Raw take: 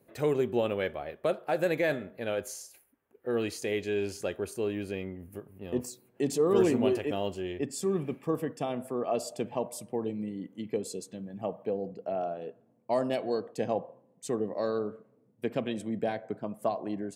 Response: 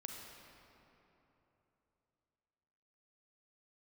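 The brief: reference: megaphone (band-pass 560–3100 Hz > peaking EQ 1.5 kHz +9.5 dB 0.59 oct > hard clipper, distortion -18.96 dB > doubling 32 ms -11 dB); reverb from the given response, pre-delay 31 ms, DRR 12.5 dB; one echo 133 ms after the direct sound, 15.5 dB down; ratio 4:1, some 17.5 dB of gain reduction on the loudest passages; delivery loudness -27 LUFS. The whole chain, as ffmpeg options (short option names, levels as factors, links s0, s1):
-filter_complex "[0:a]acompressor=threshold=0.00891:ratio=4,aecho=1:1:133:0.168,asplit=2[s0][s1];[1:a]atrim=start_sample=2205,adelay=31[s2];[s1][s2]afir=irnorm=-1:irlink=0,volume=0.335[s3];[s0][s3]amix=inputs=2:normalize=0,highpass=560,lowpass=3100,equalizer=f=1500:t=o:w=0.59:g=9.5,asoftclip=type=hard:threshold=0.015,asplit=2[s4][s5];[s5]adelay=32,volume=0.282[s6];[s4][s6]amix=inputs=2:normalize=0,volume=11.2"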